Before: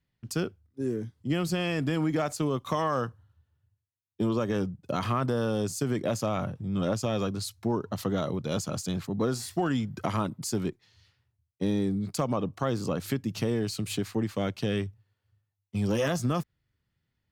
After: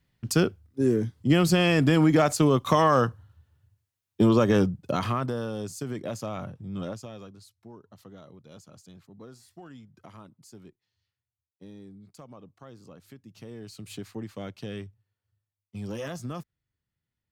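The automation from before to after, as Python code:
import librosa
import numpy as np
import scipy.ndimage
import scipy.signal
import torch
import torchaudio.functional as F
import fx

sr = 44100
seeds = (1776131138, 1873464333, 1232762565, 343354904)

y = fx.gain(x, sr, db=fx.line((4.6, 7.5), (5.51, -5.0), (6.82, -5.0), (7.09, -13.0), (7.51, -19.0), (13.19, -19.0), (13.97, -8.0)))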